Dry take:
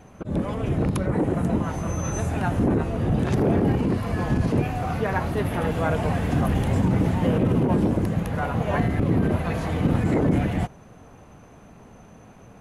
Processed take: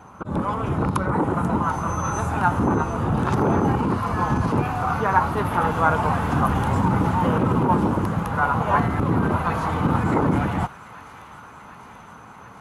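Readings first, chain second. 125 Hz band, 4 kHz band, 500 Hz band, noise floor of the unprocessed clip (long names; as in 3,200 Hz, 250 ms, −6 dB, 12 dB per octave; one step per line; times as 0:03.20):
−0.5 dB, +0.5 dB, 0.0 dB, −48 dBFS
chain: high-pass filter 53 Hz
flat-topped bell 1,100 Hz +12 dB 1 octave
on a send: delay with a high-pass on its return 739 ms, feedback 75%, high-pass 1,800 Hz, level −13.5 dB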